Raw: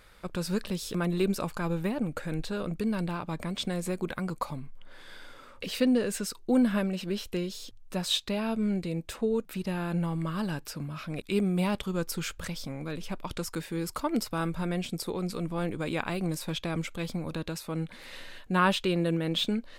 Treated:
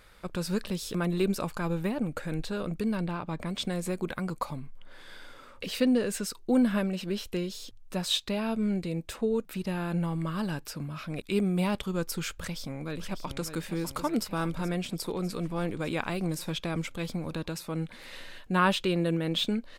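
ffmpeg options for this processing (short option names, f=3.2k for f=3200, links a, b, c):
-filter_complex "[0:a]asettb=1/sr,asplit=3[a][b][c];[a]atrim=end=2.974[d];[b]atrim=start=2.97:end=3.46,asetpts=PTS-STARTPTS,afade=t=in:d=0.004:c=qsin,afade=t=out:st=0.486:d=0.004:c=qsin,highshelf=f=5.8k:g=-9[e];[c]atrim=start=3.456[f];[d][e]acrossfade=d=0.004:c1=hsin:c2=qsin[g];[g][f]acrossfade=d=0.004:c1=qsin:c2=hsin,asplit=2[h][i];[i]afade=t=in:st=12.36:d=0.01,afade=t=out:st=13.54:d=0.01,aecho=0:1:600|1200|1800|2400|3000|3600|4200|4800|5400:0.354813|0.230629|0.149909|0.0974406|0.0633364|0.0411687|0.0267596|0.0173938|0.0113059[j];[h][j]amix=inputs=2:normalize=0"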